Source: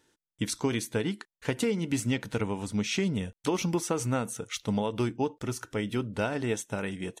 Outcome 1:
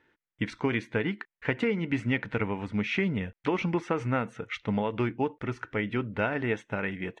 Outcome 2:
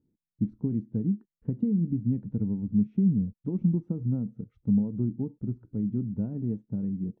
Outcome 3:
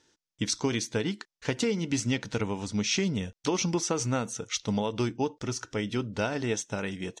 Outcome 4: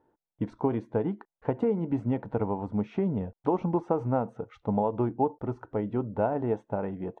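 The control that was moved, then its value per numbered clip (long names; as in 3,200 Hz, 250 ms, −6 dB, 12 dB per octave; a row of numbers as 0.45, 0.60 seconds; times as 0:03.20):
low-pass with resonance, frequency: 2,100, 200, 5,800, 810 Hertz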